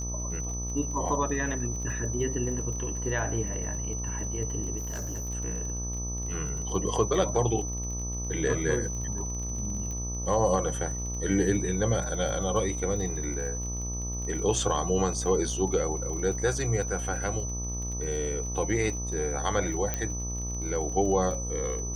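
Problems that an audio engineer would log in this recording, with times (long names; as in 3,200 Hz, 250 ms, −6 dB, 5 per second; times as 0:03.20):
mains buzz 60 Hz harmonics 21 −34 dBFS
surface crackle 38 per second −37 dBFS
whistle 6,000 Hz −35 dBFS
0:04.77–0:05.29: clipping −30.5 dBFS
0:09.91: click −25 dBFS
0:19.94: click −14 dBFS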